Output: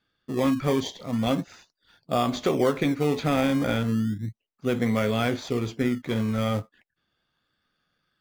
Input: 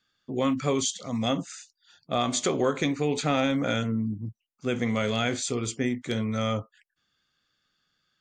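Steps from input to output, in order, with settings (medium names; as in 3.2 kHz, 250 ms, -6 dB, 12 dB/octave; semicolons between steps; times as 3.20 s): Bessel low-pass 3.4 kHz, order 8; in parallel at -7.5 dB: decimation with a swept rate 22×, swing 100% 0.35 Hz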